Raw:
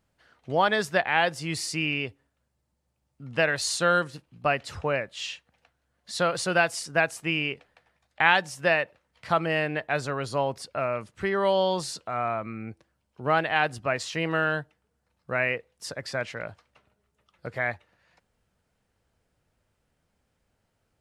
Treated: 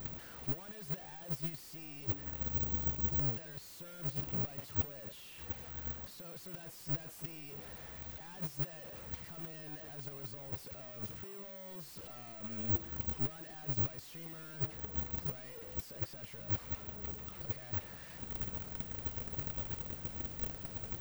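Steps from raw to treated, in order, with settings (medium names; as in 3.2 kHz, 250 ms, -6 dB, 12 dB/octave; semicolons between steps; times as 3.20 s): one-bit comparator; bass shelf 470 Hz +10 dB; transient shaper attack +7 dB, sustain 0 dB; peak limiter -18.5 dBFS, peak gain reduction 4.5 dB; gate -18 dBFS, range -40 dB; careless resampling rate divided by 2×, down none, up zero stuff; trim +13.5 dB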